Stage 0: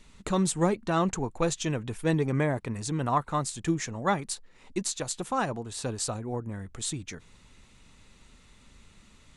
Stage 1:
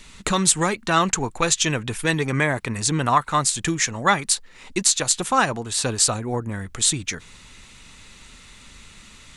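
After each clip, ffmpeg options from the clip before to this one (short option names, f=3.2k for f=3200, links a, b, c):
-filter_complex "[0:a]acrossover=split=1200[a][b];[a]alimiter=limit=-21.5dB:level=0:latency=1:release=465[c];[b]acontrast=87[d];[c][d]amix=inputs=2:normalize=0,volume=7dB"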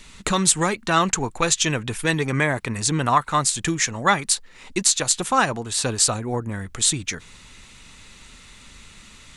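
-af anull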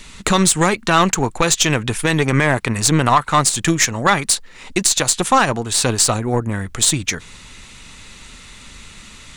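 -af "aeval=exprs='0.891*(cos(1*acos(clip(val(0)/0.891,-1,1)))-cos(1*PI/2))+0.0708*(cos(6*acos(clip(val(0)/0.891,-1,1)))-cos(6*PI/2))+0.0398*(cos(7*acos(clip(val(0)/0.891,-1,1)))-cos(7*PI/2))+0.0708*(cos(8*acos(clip(val(0)/0.891,-1,1)))-cos(8*PI/2))':c=same,alimiter=level_in=10.5dB:limit=-1dB:release=50:level=0:latency=1,volume=-1dB"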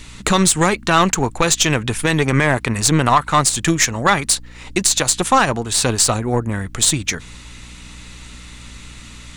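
-af "aeval=exprs='val(0)+0.0112*(sin(2*PI*60*n/s)+sin(2*PI*2*60*n/s)/2+sin(2*PI*3*60*n/s)/3+sin(2*PI*4*60*n/s)/4+sin(2*PI*5*60*n/s)/5)':c=same"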